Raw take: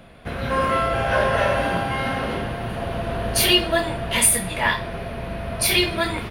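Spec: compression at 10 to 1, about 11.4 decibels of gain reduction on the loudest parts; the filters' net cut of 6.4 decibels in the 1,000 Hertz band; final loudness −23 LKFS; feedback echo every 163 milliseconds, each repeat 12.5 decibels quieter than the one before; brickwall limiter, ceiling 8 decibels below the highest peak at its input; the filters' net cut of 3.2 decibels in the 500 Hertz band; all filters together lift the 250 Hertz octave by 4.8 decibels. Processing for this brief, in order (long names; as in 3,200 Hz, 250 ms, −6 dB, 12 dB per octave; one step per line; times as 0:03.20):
parametric band 250 Hz +8.5 dB
parametric band 500 Hz −4 dB
parametric band 1,000 Hz −8 dB
downward compressor 10 to 1, threshold −23 dBFS
brickwall limiter −21 dBFS
repeating echo 163 ms, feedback 24%, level −12.5 dB
level +7 dB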